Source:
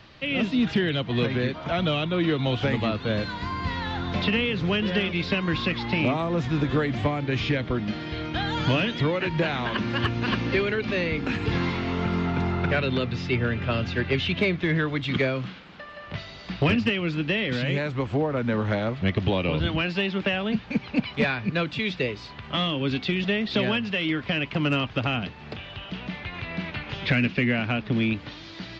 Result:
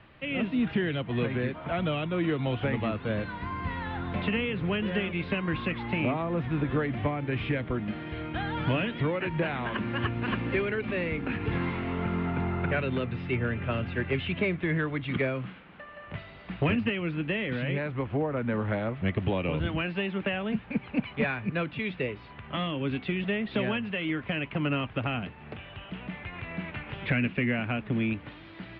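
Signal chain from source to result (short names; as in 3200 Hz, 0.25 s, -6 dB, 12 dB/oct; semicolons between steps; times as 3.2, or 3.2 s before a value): LPF 2800 Hz 24 dB/oct; gain -4 dB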